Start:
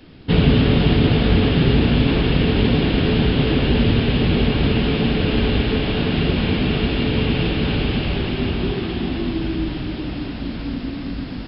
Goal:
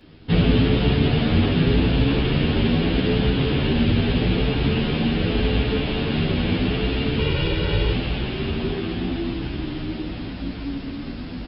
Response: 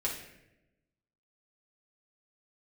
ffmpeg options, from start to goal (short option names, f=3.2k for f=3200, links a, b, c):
-filter_complex "[0:a]asettb=1/sr,asplit=3[a][b][c];[a]atrim=end=7.194[d];[b]atrim=start=7.19:end=7.93,asetpts=PTS-STARTPTS,afade=t=in:d=0.004:c=qsin,afade=t=out:st=0.736:d=0.004:c=qsin,aecho=1:1:2.1:0.77,atrim=end_sample=32634[e];[c]atrim=start=7.926[f];[d][e]acrossfade=d=0.004:c1=hsin:c2=qsin[g];[g][f]acrossfade=d=0.004:c1=qsin:c2=hsin,asplit=2[h][i];[i]adelay=10.6,afreqshift=0.82[j];[h][j]amix=inputs=2:normalize=1"